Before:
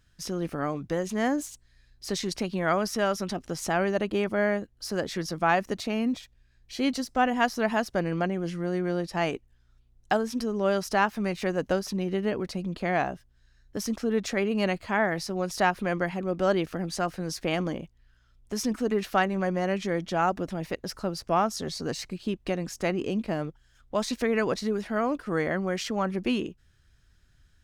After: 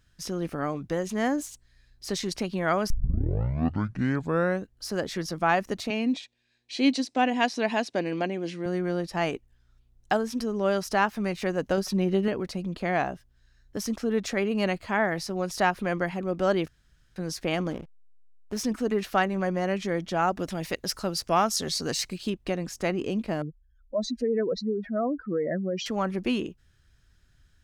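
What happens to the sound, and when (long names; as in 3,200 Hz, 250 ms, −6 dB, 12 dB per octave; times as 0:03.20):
0:02.90: tape start 1.81 s
0:05.90–0:08.66: loudspeaker in its box 230–9,100 Hz, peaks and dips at 280 Hz +7 dB, 1,300 Hz −8 dB, 2,500 Hz +6 dB, 3,900 Hz +7 dB
0:11.77–0:12.28: comb filter 5.4 ms, depth 68%
0:16.68–0:17.16: fill with room tone
0:17.70–0:18.62: slack as between gear wheels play −35 dBFS
0:20.39–0:22.30: high-shelf EQ 2,200 Hz +9 dB
0:23.42–0:25.86: expanding power law on the bin magnitudes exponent 2.6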